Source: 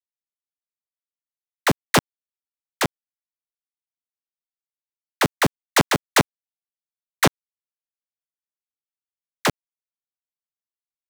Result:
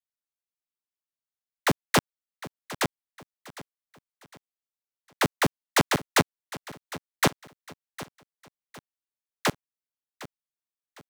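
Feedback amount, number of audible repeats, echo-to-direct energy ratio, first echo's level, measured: 37%, 3, −16.5 dB, −17.0 dB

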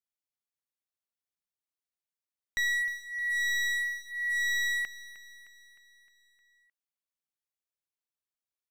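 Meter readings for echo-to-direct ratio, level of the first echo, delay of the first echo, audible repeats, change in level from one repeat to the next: −13.5 dB, −15.0 dB, 308 ms, 5, −5.0 dB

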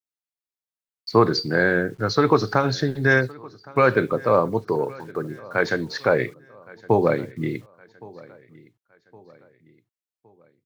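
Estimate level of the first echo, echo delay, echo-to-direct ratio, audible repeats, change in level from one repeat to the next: −23.0 dB, 1,115 ms, −22.0 dB, 2, −7.0 dB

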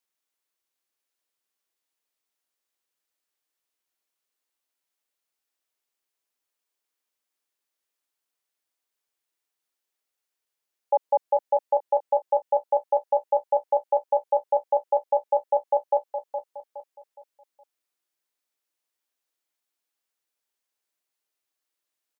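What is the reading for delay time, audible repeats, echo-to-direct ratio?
416 ms, 4, −8.5 dB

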